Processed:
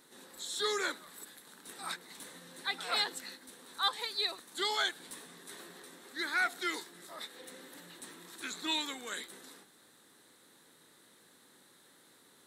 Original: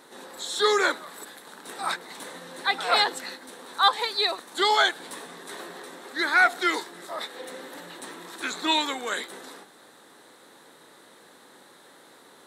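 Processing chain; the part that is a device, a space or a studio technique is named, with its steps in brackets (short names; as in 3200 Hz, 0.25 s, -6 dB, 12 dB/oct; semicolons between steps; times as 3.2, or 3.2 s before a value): smiley-face EQ (low shelf 150 Hz +6 dB; bell 720 Hz -7.5 dB 1.9 oct; high shelf 8200 Hz +6.5 dB); gain -8.5 dB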